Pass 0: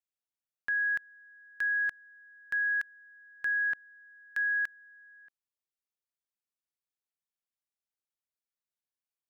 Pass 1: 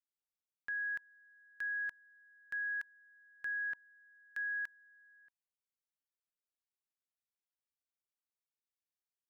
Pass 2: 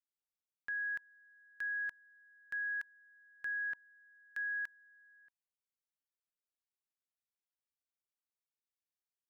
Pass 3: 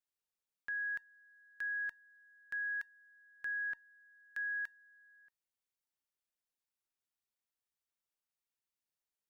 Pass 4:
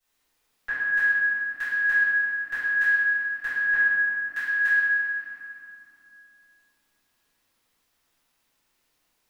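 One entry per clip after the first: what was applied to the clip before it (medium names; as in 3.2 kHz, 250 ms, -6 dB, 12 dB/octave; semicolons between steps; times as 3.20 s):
band-stop 960 Hz, Q 25; trim -8.5 dB
no audible change
feedback comb 920 Hz, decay 0.15 s, harmonics all, mix 50%; trim +5.5 dB
reverberation RT60 3.2 s, pre-delay 3 ms, DRR -17 dB; trim +5 dB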